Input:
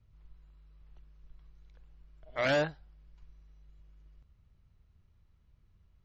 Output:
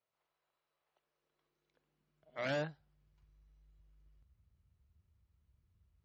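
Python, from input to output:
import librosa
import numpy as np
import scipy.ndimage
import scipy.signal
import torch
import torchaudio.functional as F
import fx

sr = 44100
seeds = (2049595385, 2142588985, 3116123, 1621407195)

y = fx.filter_sweep_highpass(x, sr, from_hz=610.0, to_hz=64.0, start_s=0.92, end_s=3.41, q=1.6)
y = y * librosa.db_to_amplitude(-9.0)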